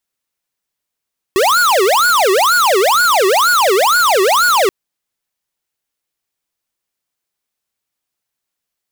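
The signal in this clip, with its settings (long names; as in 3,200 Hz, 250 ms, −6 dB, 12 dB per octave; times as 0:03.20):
siren wail 371–1,460 Hz 2.1 per second square −11.5 dBFS 3.33 s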